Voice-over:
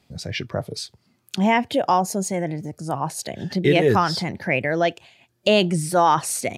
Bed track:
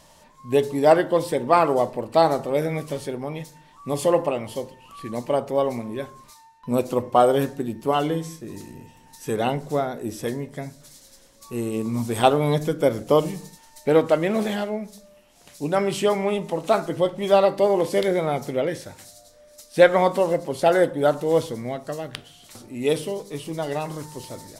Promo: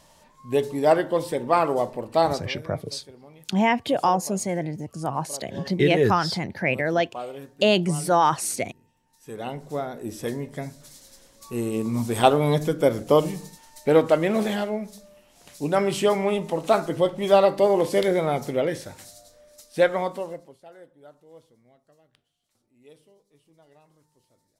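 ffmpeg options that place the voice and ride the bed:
-filter_complex "[0:a]adelay=2150,volume=0.794[s0];[1:a]volume=5.62,afade=t=out:st=2.29:d=0.26:silence=0.177828,afade=t=in:st=9.1:d=1.49:silence=0.125893,afade=t=out:st=19.15:d=1.44:silence=0.0334965[s1];[s0][s1]amix=inputs=2:normalize=0"

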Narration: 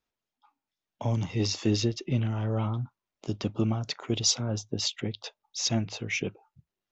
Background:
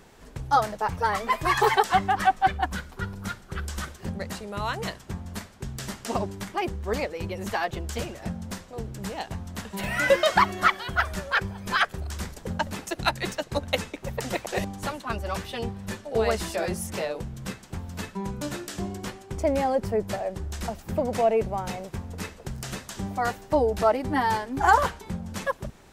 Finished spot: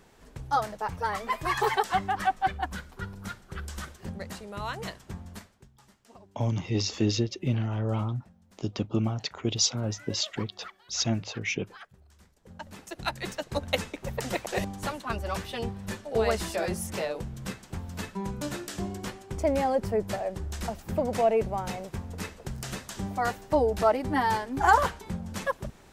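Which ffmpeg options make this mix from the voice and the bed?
-filter_complex "[0:a]adelay=5350,volume=1[s0];[1:a]volume=8.41,afade=t=out:st=5.22:d=0.47:silence=0.1,afade=t=in:st=12.38:d=1.36:silence=0.0668344[s1];[s0][s1]amix=inputs=2:normalize=0"

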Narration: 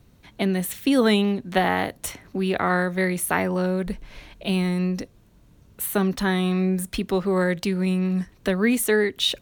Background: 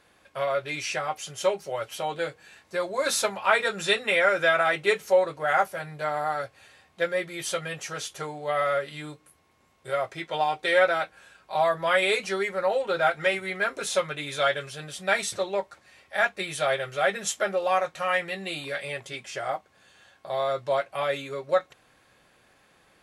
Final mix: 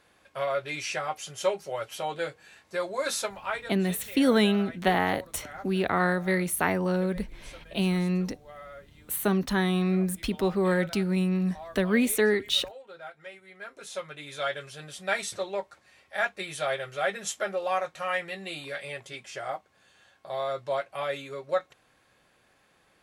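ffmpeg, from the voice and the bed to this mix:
-filter_complex "[0:a]adelay=3300,volume=0.708[s0];[1:a]volume=5.01,afade=t=out:st=2.88:d=0.89:silence=0.125893,afade=t=in:st=13.47:d=1.42:silence=0.158489[s1];[s0][s1]amix=inputs=2:normalize=0"

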